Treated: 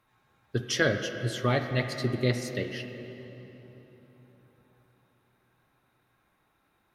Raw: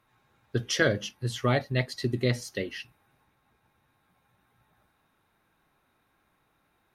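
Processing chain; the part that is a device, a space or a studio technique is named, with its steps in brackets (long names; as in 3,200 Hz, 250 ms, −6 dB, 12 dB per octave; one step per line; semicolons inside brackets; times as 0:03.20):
filtered reverb send (on a send: high-pass filter 150 Hz 6 dB per octave + low-pass filter 3,400 Hz 12 dB per octave + convolution reverb RT60 3.7 s, pre-delay 40 ms, DRR 6.5 dB)
on the sum: level −1 dB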